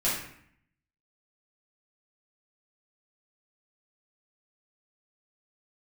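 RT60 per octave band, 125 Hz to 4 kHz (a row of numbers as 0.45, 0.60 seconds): 0.90, 0.85, 0.60, 0.65, 0.70, 0.50 seconds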